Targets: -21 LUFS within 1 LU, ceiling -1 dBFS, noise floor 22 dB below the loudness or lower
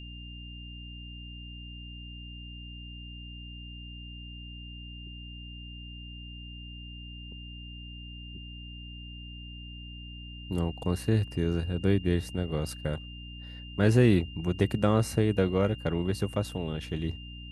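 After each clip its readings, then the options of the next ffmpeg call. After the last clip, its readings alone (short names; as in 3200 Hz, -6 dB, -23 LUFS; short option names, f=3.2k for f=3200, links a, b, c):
hum 60 Hz; harmonics up to 300 Hz; hum level -41 dBFS; steady tone 2800 Hz; tone level -46 dBFS; loudness -28.5 LUFS; peak -9.5 dBFS; loudness target -21.0 LUFS
-> -af "bandreject=f=60:t=h:w=6,bandreject=f=120:t=h:w=6,bandreject=f=180:t=h:w=6,bandreject=f=240:t=h:w=6,bandreject=f=300:t=h:w=6"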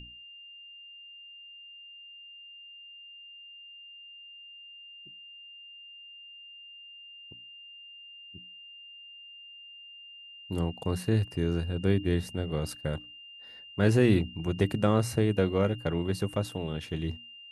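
hum none; steady tone 2800 Hz; tone level -46 dBFS
-> -af "bandreject=f=2.8k:w=30"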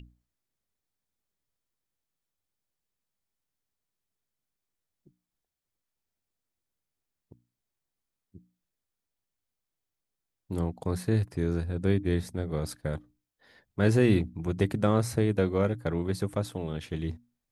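steady tone none; loudness -29.0 LUFS; peak -11.0 dBFS; loudness target -21.0 LUFS
-> -af "volume=8dB"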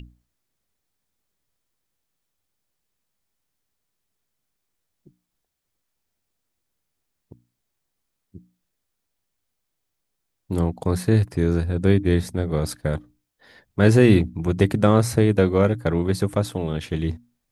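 loudness -21.0 LUFS; peak -3.0 dBFS; noise floor -79 dBFS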